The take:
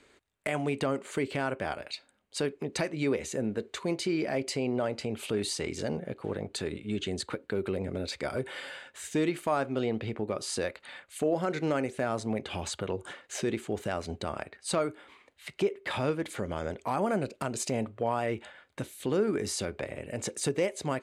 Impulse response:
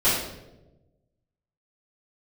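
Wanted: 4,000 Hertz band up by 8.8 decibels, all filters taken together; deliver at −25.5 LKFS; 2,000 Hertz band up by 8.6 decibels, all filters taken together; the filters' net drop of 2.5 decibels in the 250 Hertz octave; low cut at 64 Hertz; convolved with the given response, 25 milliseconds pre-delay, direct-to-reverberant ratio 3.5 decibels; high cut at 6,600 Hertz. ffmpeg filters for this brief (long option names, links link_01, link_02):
-filter_complex "[0:a]highpass=64,lowpass=6600,equalizer=frequency=250:width_type=o:gain=-3.5,equalizer=frequency=2000:width_type=o:gain=8.5,equalizer=frequency=4000:width_type=o:gain=9,asplit=2[link_01][link_02];[1:a]atrim=start_sample=2205,adelay=25[link_03];[link_02][link_03]afir=irnorm=-1:irlink=0,volume=-20dB[link_04];[link_01][link_04]amix=inputs=2:normalize=0,volume=3dB"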